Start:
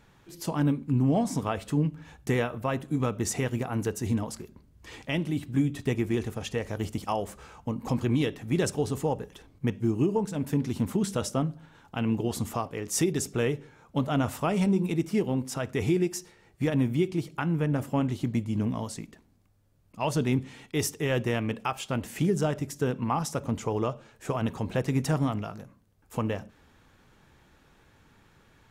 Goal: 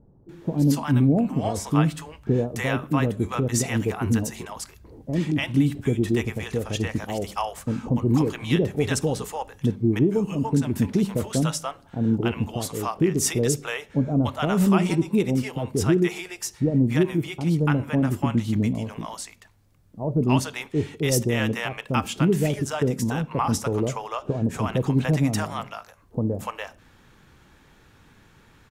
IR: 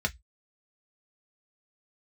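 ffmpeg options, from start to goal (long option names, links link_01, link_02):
-filter_complex "[0:a]acrossover=split=640[link_01][link_02];[link_02]adelay=290[link_03];[link_01][link_03]amix=inputs=2:normalize=0,volume=5.5dB"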